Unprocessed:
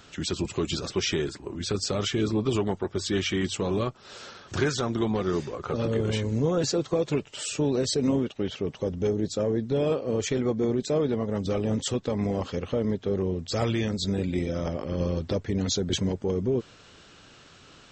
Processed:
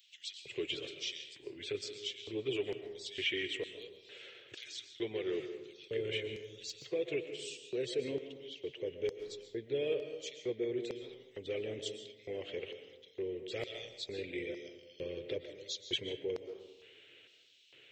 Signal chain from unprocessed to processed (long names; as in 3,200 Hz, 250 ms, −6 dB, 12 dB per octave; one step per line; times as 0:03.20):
drawn EQ curve 130 Hz 0 dB, 190 Hz −21 dB, 360 Hz −15 dB, 850 Hz −29 dB, 1,200 Hz −30 dB, 2,100 Hz −5 dB, 3,300 Hz −7 dB, 4,900 Hz −26 dB, 7,800 Hz −24 dB, 12,000 Hz −2 dB
auto-filter high-pass square 1.1 Hz 450–4,900 Hz
convolution reverb RT60 1.1 s, pre-delay 90 ms, DRR 8 dB
level +4 dB